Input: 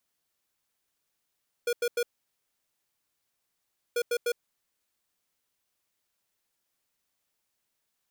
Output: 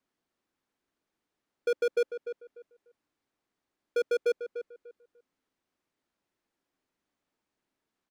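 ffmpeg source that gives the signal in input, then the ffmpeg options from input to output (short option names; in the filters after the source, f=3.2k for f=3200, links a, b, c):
-f lavfi -i "aevalsrc='0.0447*(2*lt(mod(479*t,1),0.5)-1)*clip(min(mod(mod(t,2.29),0.15),0.06-mod(mod(t,2.29),0.15))/0.005,0,1)*lt(mod(t,2.29),0.45)':d=4.58:s=44100"
-filter_complex "[0:a]firequalizer=gain_entry='entry(120,0);entry(270,9);entry(520,2);entry(1700,-1);entry(2800,-5);entry(13000,-19)':delay=0.05:min_phase=1,asplit=2[a][b];[b]adelay=296,lowpass=f=1.9k:p=1,volume=-10dB,asplit=2[c][d];[d]adelay=296,lowpass=f=1.9k:p=1,volume=0.24,asplit=2[e][f];[f]adelay=296,lowpass=f=1.9k:p=1,volume=0.24[g];[c][e][g]amix=inputs=3:normalize=0[h];[a][h]amix=inputs=2:normalize=0"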